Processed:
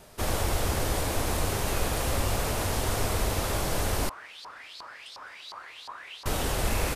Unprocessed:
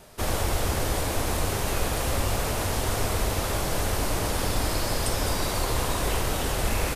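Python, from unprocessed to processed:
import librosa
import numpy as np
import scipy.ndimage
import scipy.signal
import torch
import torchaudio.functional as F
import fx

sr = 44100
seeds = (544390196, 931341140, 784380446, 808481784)

y = fx.filter_lfo_bandpass(x, sr, shape='saw_up', hz=2.8, low_hz=950.0, high_hz=4600.0, q=6.1, at=(4.09, 6.26))
y = F.gain(torch.from_numpy(y), -1.5).numpy()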